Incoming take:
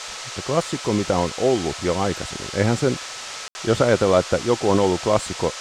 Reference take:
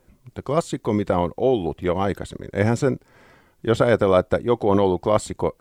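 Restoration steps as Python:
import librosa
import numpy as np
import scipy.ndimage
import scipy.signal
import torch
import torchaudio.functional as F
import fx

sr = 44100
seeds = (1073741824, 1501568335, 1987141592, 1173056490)

y = fx.notch(x, sr, hz=1300.0, q=30.0)
y = fx.fix_ambience(y, sr, seeds[0], print_start_s=0.0, print_end_s=0.5, start_s=3.48, end_s=3.55)
y = fx.noise_reduce(y, sr, print_start_s=2.97, print_end_s=3.47, reduce_db=24.0)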